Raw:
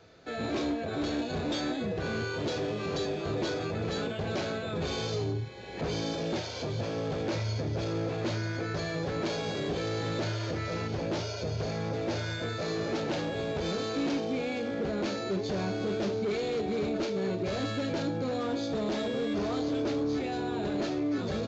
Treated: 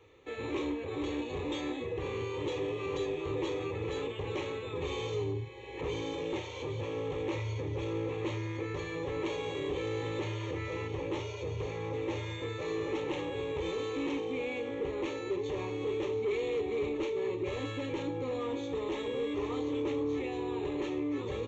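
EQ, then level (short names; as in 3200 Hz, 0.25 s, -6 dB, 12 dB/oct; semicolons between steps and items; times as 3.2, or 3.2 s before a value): fixed phaser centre 1000 Hz, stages 8; 0.0 dB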